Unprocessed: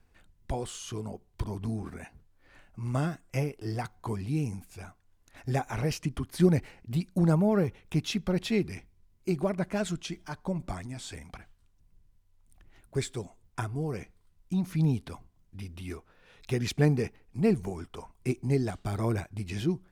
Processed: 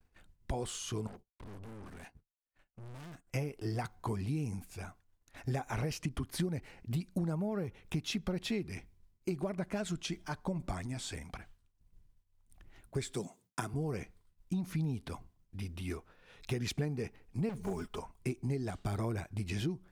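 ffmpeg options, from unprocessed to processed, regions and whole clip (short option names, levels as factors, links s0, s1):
-filter_complex "[0:a]asettb=1/sr,asplit=3[s0][s1][s2];[s0]atrim=end=1.074[s3];[s1]atrim=start=1.07:end=3.27,asetpts=PTS-STARTPTS,afade=t=in:d=0.004:c=qsin,afade=t=out:st=2.196:d=0.004:c=qsin,agate=range=0.0224:threshold=0.00316:ratio=3:release=100:detection=peak,aeval=exprs='(tanh(224*val(0)+0.45)-tanh(0.45))/224':c=same[s4];[s2]atrim=start=3.266[s5];[s3][s4]acrossfade=d=0.004:c1=hsin:c2=qsin[s6];[s6][s5]acrossfade=d=0.004:c1=qsin:c2=hsin,asettb=1/sr,asplit=3[s7][s8][s9];[s7]atrim=end=13.144[s10];[s8]atrim=start=13.14:end=13.74,asetpts=PTS-STARTPTS,afade=t=in:d=0.004:c=qsin,afade=t=out:st=0.596:d=0.004:c=qsin,highpass=f=160:w=0.5412,highpass=f=160:w=1.3066,bass=f=250:g=6,treble=f=4000:g=6[s11];[s9]atrim=start=13.736[s12];[s10][s11]acrossfade=d=0.004:c1=hsin:c2=qsin[s13];[s13][s12]acrossfade=d=0.004:c1=qsin:c2=hsin,asettb=1/sr,asplit=3[s14][s15][s16];[s14]atrim=end=17.494[s17];[s15]atrim=start=17.49:end=17.99,asetpts=PTS-STARTPTS,afade=t=in:d=0.004:c=qsin,afade=t=out:st=0.496:d=0.004:c=qsin,acrusher=bits=8:mode=log:mix=0:aa=0.000001,aecho=1:1:4.8:0.66,atrim=end_sample=22050,asoftclip=type=hard:threshold=0.0398[s18];[s16]atrim=start=17.986[s19];[s17][s18]acrossfade=d=0.004:c1=hsin:c2=qsin[s20];[s20][s19]acrossfade=d=0.004:c1=qsin:c2=hsin,agate=range=0.0224:threshold=0.00158:ratio=3:detection=peak,acompressor=threshold=0.0282:ratio=10"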